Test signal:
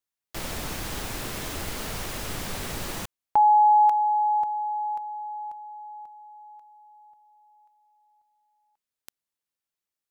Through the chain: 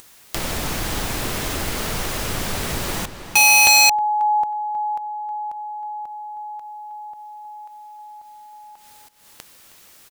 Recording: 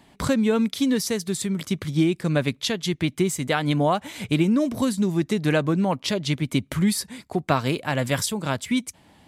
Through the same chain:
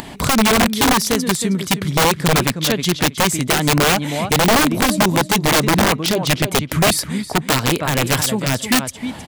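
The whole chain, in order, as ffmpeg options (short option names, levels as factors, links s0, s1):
-filter_complex "[0:a]acompressor=mode=upward:threshold=0.0355:ratio=2.5:attack=7.2:release=177:knee=2.83:detection=peak,asplit=2[s0][s1];[s1]adelay=316,lowpass=f=4500:p=1,volume=0.316,asplit=2[s2][s3];[s3]adelay=316,lowpass=f=4500:p=1,volume=0.18,asplit=2[s4][s5];[s5]adelay=316,lowpass=f=4500:p=1,volume=0.18[s6];[s0][s2][s4][s6]amix=inputs=4:normalize=0,aeval=exprs='(mod(6.31*val(0)+1,2)-1)/6.31':c=same,volume=2.24"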